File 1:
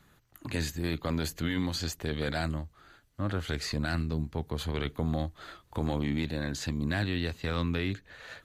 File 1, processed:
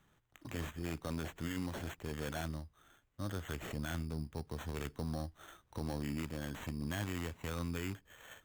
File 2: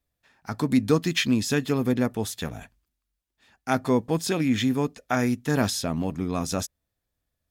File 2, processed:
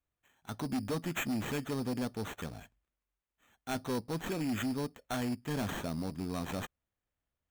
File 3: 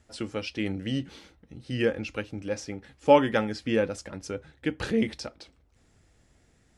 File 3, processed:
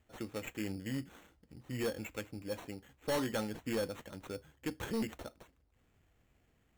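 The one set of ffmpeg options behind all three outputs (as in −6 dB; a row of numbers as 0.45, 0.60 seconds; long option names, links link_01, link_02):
-af "acrusher=samples=9:mix=1:aa=0.000001,aeval=exprs='0.531*(cos(1*acos(clip(val(0)/0.531,-1,1)))-cos(1*PI/2))+0.0168*(cos(7*acos(clip(val(0)/0.531,-1,1)))-cos(7*PI/2))':channel_layout=same,volume=23.5dB,asoftclip=hard,volume=-23.5dB,volume=-6.5dB"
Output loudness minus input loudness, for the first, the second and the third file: −9.0, −11.5, −11.5 LU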